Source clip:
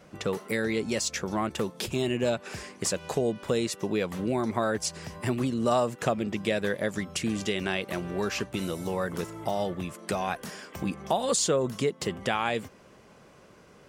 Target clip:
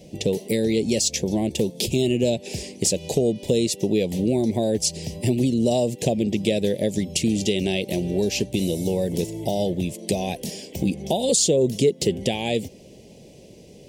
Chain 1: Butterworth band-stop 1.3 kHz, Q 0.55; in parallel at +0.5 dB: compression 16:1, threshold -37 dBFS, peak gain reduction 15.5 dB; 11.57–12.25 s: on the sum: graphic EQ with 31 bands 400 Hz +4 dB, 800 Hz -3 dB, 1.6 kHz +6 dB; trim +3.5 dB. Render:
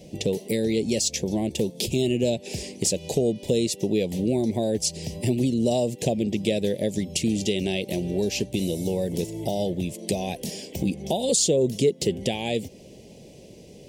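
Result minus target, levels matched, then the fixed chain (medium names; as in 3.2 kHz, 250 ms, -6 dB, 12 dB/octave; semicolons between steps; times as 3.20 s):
compression: peak gain reduction +8 dB
Butterworth band-stop 1.3 kHz, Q 0.55; in parallel at +0.5 dB: compression 16:1, threshold -28.5 dBFS, peak gain reduction 7.5 dB; 11.57–12.25 s: on the sum: graphic EQ with 31 bands 400 Hz +4 dB, 800 Hz -3 dB, 1.6 kHz +6 dB; trim +3.5 dB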